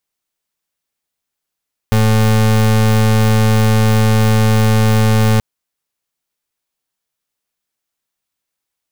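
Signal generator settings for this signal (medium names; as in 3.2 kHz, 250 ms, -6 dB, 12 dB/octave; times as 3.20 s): pulse 109 Hz, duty 33% -11 dBFS 3.48 s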